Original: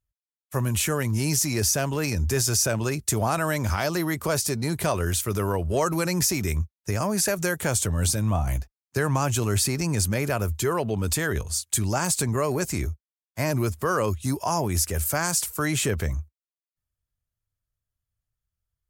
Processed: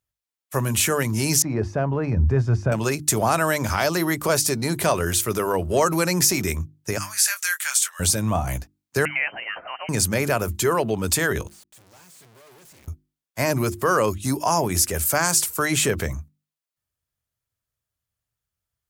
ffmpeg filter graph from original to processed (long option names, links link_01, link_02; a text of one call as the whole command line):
ffmpeg -i in.wav -filter_complex "[0:a]asettb=1/sr,asplit=3[link_01][link_02][link_03];[link_01]atrim=end=1.424[link_04];[link_02]atrim=start=1.42:end=2.72,asetpts=PTS-STARTPTS,afade=type=in:duration=0.004:curve=qsin,afade=type=out:start_time=1.296:duration=0.004:curve=qsin,lowpass=1100,asubboost=boost=8.5:cutoff=180[link_05];[link_03]atrim=start=2.716[link_06];[link_04][link_05]acrossfade=duration=0.004:curve1=hsin:curve2=qsin[link_07];[link_07][link_06]acrossfade=duration=0.004:curve1=qsin:curve2=hsin,asettb=1/sr,asplit=3[link_08][link_09][link_10];[link_08]atrim=end=6.984[link_11];[link_09]atrim=start=6.98:end=8,asetpts=PTS-STARTPTS,afade=type=in:duration=0.004:curve=qsin,afade=type=out:start_time=1.016:duration=0.004:curve=qsin,highpass=frequency=1400:width=0.5412,highpass=frequency=1400:width=1.3066,asplit=2[link_12][link_13];[link_13]adelay=22,volume=-8dB[link_14];[link_12][link_14]amix=inputs=2:normalize=0,atrim=end_sample=44982[link_15];[link_10]atrim=start=7.996[link_16];[link_11][link_15]acrossfade=duration=0.004:curve1=hsin:curve2=qsin[link_17];[link_17][link_16]acrossfade=duration=0.004:curve1=qsin:curve2=hsin,asettb=1/sr,asplit=3[link_18][link_19][link_20];[link_18]atrim=end=9.054[link_21];[link_19]atrim=start=9.05:end=9.89,asetpts=PTS-STARTPTS,afade=type=in:duration=0.004:curve=qsin,afade=type=out:start_time=0.836:duration=0.004:curve=qsin,highpass=830,lowpass=frequency=2700:width_type=q:width=0.5098,lowpass=frequency=2700:width_type=q:width=0.6013,lowpass=frequency=2700:width_type=q:width=0.9,lowpass=frequency=2700:width_type=q:width=2.563,afreqshift=-3200[link_22];[link_20]atrim=start=9.886[link_23];[link_21][link_22]acrossfade=duration=0.004:curve1=hsin:curve2=qsin[link_24];[link_24][link_23]acrossfade=duration=0.004:curve1=qsin:curve2=hsin,asettb=1/sr,asplit=3[link_25][link_26][link_27];[link_25]atrim=end=11.474[link_28];[link_26]atrim=start=11.47:end=12.88,asetpts=PTS-STARTPTS,afade=type=in:duration=0.004:curve=qsin,afade=type=out:start_time=1.406:duration=0.004:curve=qsin,aeval=exprs='(tanh(70.8*val(0)+0.75)-tanh(0.75))/70.8':channel_layout=same,acrusher=bits=6:dc=4:mix=0:aa=0.000001[link_29];[link_27]atrim=start=12.876[link_30];[link_28][link_29]acrossfade=duration=0.004:curve1=hsin:curve2=qsin[link_31];[link_31][link_30]acrossfade=duration=0.004:curve1=qsin:curve2=hsin,highpass=frequency=160:poles=1,bandreject=frequency=50:width_type=h:width=6,bandreject=frequency=100:width_type=h:width=6,bandreject=frequency=150:width_type=h:width=6,bandreject=frequency=200:width_type=h:width=6,bandreject=frequency=250:width_type=h:width=6,bandreject=frequency=300:width_type=h:width=6,bandreject=frequency=350:width_type=h:width=6,volume=5dB" out.wav